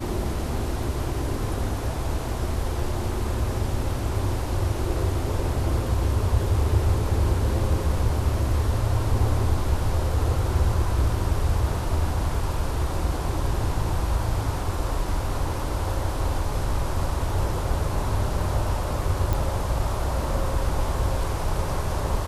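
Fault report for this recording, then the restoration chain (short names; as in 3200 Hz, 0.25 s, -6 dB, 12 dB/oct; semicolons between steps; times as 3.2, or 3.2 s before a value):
19.33 pop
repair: de-click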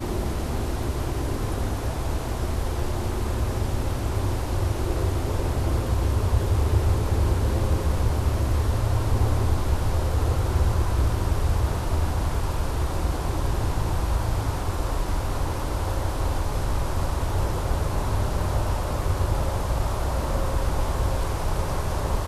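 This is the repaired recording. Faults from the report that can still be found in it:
none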